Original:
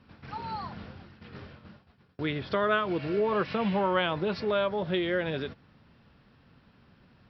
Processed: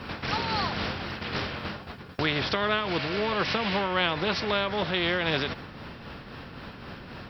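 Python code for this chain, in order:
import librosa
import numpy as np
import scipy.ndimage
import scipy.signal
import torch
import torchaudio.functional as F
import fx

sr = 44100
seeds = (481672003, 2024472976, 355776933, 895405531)

y = fx.tremolo_shape(x, sr, shape='triangle', hz=3.8, depth_pct=50)
y = fx.rider(y, sr, range_db=4, speed_s=0.5)
y = fx.spectral_comp(y, sr, ratio=2.0)
y = y * 10.0 ** (6.0 / 20.0)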